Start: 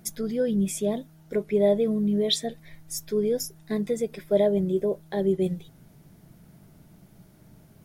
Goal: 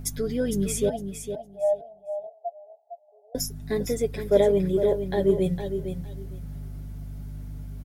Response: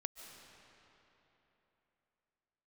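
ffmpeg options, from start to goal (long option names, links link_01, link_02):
-filter_complex "[0:a]aeval=exprs='val(0)+0.0141*(sin(2*PI*50*n/s)+sin(2*PI*2*50*n/s)/2+sin(2*PI*3*50*n/s)/3+sin(2*PI*4*50*n/s)/4+sin(2*PI*5*50*n/s)/5)':channel_layout=same,asettb=1/sr,asplit=3[link_01][link_02][link_03];[link_01]atrim=end=0.894[link_04];[link_02]atrim=start=0.89:end=3.35,asetpts=PTS-STARTPTS,afade=type=in:duration=0.004:curve=qsin,afade=type=out:start_time=2.456:duration=0.004:curve=qsin,asuperpass=centerf=700:order=8:qfactor=3.1[link_05];[link_03]atrim=start=3.346[link_06];[link_04][link_05]acrossfade=duration=0.004:curve1=hsin:curve2=qsin[link_07];[link_07][link_06]acrossfade=duration=0.004:curve1=qsin:curve2=hsin,aecho=1:1:7.1:0.56,aecho=1:1:458|916|1374:0.376|0.0639|0.0109,aeval=exprs='0.335*(cos(1*acos(clip(val(0)/0.335,-1,1)))-cos(1*PI/2))+0.0133*(cos(3*acos(clip(val(0)/0.335,-1,1)))-cos(3*PI/2))':channel_layout=same,volume=2.5dB"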